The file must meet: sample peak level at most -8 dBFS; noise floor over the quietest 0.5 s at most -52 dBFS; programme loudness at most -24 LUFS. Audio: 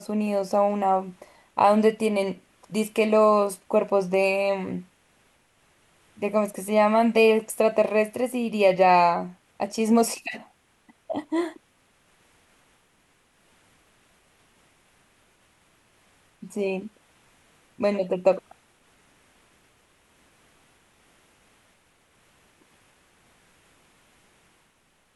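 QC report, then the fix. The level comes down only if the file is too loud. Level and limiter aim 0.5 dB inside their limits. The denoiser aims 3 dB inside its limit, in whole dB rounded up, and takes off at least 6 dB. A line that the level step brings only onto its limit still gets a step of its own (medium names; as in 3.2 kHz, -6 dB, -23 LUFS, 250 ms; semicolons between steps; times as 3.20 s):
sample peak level -7.0 dBFS: fail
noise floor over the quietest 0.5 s -65 dBFS: pass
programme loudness -23.5 LUFS: fail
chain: trim -1 dB; peak limiter -8.5 dBFS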